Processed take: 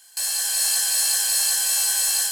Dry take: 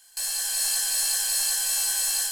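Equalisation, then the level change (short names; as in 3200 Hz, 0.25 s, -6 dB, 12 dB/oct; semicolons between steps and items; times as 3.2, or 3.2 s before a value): low shelf 90 Hz -9 dB; +4.0 dB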